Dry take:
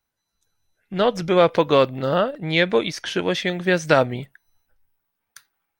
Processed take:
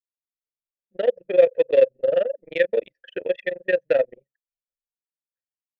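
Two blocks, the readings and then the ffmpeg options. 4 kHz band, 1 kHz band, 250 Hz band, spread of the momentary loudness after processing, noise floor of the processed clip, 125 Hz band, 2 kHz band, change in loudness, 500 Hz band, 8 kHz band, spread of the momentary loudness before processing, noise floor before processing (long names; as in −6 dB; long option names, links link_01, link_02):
−15.5 dB, −17.0 dB, −15.0 dB, 10 LU, below −85 dBFS, below −20 dB, −6.5 dB, −1.5 dB, +0.5 dB, below −30 dB, 8 LU, −79 dBFS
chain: -filter_complex "[0:a]tremolo=f=23:d=0.857,asplit=2[link_01][link_02];[link_02]aeval=exprs='0.168*(abs(mod(val(0)/0.168+3,4)-2)-1)':channel_layout=same,volume=-6dB[link_03];[link_01][link_03]amix=inputs=2:normalize=0,asplit=3[link_04][link_05][link_06];[link_04]bandpass=frequency=530:width_type=q:width=8,volume=0dB[link_07];[link_05]bandpass=frequency=1840:width_type=q:width=8,volume=-6dB[link_08];[link_06]bandpass=frequency=2480:width_type=q:width=8,volume=-9dB[link_09];[link_07][link_08][link_09]amix=inputs=3:normalize=0,anlmdn=6.31,volume=5.5dB"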